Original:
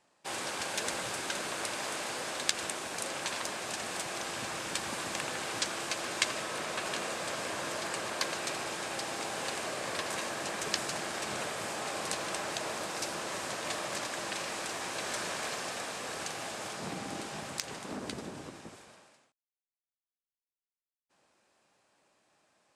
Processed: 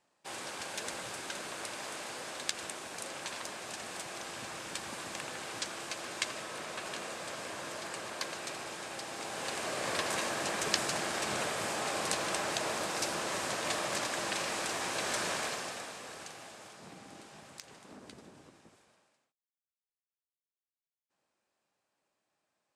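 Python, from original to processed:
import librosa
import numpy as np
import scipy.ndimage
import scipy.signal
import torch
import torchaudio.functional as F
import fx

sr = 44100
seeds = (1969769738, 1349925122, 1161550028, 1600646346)

y = fx.gain(x, sr, db=fx.line((9.09, -5.0), (9.89, 2.0), (15.35, 2.0), (15.95, -6.0), (16.74, -12.0)))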